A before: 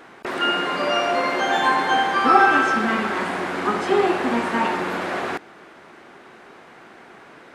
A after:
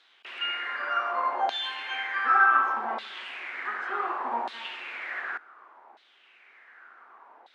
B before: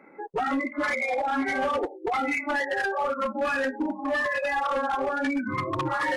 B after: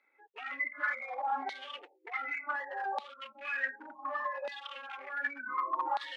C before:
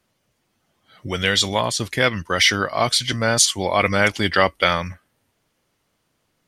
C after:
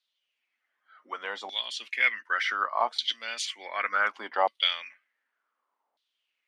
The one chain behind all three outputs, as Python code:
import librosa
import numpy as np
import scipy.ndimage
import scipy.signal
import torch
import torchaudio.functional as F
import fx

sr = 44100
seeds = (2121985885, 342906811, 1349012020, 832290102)

y = fx.filter_lfo_bandpass(x, sr, shape='saw_down', hz=0.67, low_hz=780.0, high_hz=3900.0, q=4.8)
y = scipy.signal.sosfilt(scipy.signal.ellip(4, 1.0, 40, 220.0, 'highpass', fs=sr, output='sos'), y)
y = y * librosa.db_to_amplitude(2.0)